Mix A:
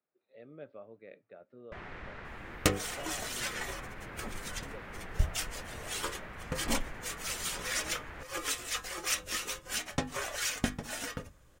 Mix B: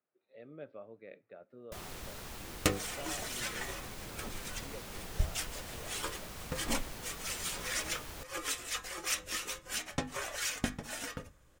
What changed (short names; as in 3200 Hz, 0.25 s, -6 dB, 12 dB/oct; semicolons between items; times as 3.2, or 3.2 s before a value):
first sound: remove synth low-pass 1900 Hz, resonance Q 2.1; second sound -3.0 dB; reverb: on, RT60 0.50 s